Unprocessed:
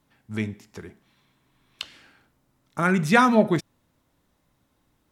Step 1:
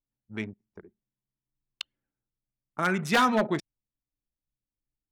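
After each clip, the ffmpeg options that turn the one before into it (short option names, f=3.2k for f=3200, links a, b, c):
-af "aeval=exprs='0.282*(abs(mod(val(0)/0.282+3,4)-2)-1)':c=same,anlmdn=10,lowshelf=f=200:g=-10,volume=-2.5dB"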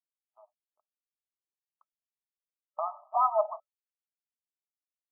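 -af "afftfilt=real='re*between(b*sr/4096,590,1300)':imag='im*between(b*sr/4096,590,1300)':win_size=4096:overlap=0.75,agate=range=-33dB:threshold=-49dB:ratio=3:detection=peak,tiltshelf=f=970:g=5"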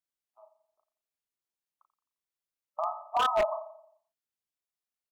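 -filter_complex "[0:a]asplit=2[a][b];[b]adelay=36,volume=-6dB[c];[a][c]amix=inputs=2:normalize=0,asplit=2[d][e];[e]adelay=87,lowpass=f=1.1k:p=1,volume=-11dB,asplit=2[f][g];[g]adelay=87,lowpass=f=1.1k:p=1,volume=0.54,asplit=2[h][i];[i]adelay=87,lowpass=f=1.1k:p=1,volume=0.54,asplit=2[j][k];[k]adelay=87,lowpass=f=1.1k:p=1,volume=0.54,asplit=2[l][m];[m]adelay=87,lowpass=f=1.1k:p=1,volume=0.54,asplit=2[n][o];[o]adelay=87,lowpass=f=1.1k:p=1,volume=0.54[p];[d][f][h][j][l][n][p]amix=inputs=7:normalize=0,aeval=exprs='0.112*(abs(mod(val(0)/0.112+3,4)-2)-1)':c=same"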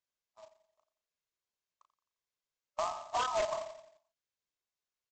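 -af "acompressor=threshold=-30dB:ratio=8,aecho=1:1:1.9:0.31,aresample=16000,acrusher=bits=2:mode=log:mix=0:aa=0.000001,aresample=44100"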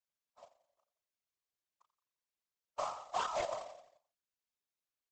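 -af "afftfilt=real='hypot(re,im)*cos(2*PI*random(0))':imag='hypot(re,im)*sin(2*PI*random(1))':win_size=512:overlap=0.75,volume=2dB"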